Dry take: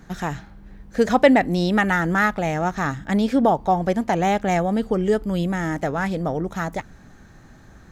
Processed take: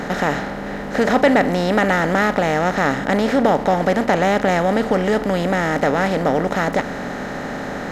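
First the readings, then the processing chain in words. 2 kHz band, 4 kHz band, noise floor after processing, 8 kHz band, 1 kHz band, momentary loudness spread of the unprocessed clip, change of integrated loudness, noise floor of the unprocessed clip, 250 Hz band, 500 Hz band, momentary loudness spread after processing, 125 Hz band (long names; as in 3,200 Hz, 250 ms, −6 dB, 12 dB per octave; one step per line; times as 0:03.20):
+4.5 dB, +5.0 dB, −28 dBFS, +4.0 dB, +3.5 dB, 12 LU, +2.5 dB, −48 dBFS, +2.0 dB, +4.5 dB, 11 LU, +1.5 dB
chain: compressor on every frequency bin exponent 0.4
level −3 dB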